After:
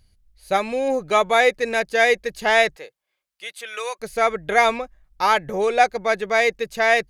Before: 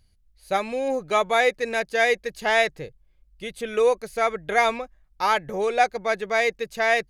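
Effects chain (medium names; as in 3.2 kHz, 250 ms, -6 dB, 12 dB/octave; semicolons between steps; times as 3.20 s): 2.75–3.99 s: high-pass 600 Hz -> 1.3 kHz 12 dB/octave; trim +3.5 dB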